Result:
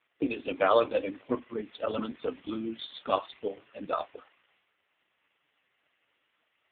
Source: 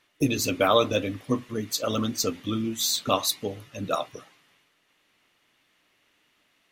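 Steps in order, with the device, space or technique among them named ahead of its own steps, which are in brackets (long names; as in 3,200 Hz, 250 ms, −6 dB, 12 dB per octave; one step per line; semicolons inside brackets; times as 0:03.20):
telephone (band-pass filter 330–3,500 Hz; AMR narrowband 4.75 kbit/s 8,000 Hz)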